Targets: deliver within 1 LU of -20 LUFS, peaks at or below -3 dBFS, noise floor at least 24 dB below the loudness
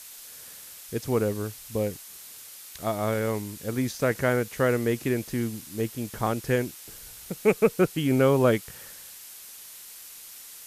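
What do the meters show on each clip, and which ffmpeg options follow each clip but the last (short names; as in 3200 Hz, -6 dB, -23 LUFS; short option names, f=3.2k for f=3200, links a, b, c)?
noise floor -45 dBFS; noise floor target -51 dBFS; loudness -26.5 LUFS; peak -8.0 dBFS; loudness target -20.0 LUFS
-> -af "afftdn=nr=6:nf=-45"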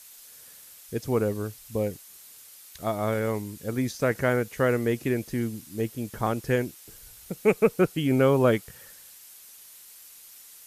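noise floor -49 dBFS; noise floor target -51 dBFS
-> -af "afftdn=nr=6:nf=-49"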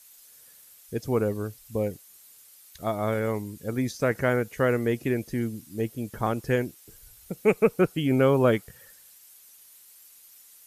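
noise floor -53 dBFS; loudness -26.5 LUFS; peak -8.0 dBFS; loudness target -20.0 LUFS
-> -af "volume=6.5dB,alimiter=limit=-3dB:level=0:latency=1"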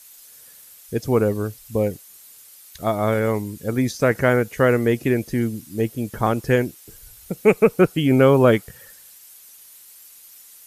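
loudness -20.5 LUFS; peak -3.0 dBFS; noise floor -47 dBFS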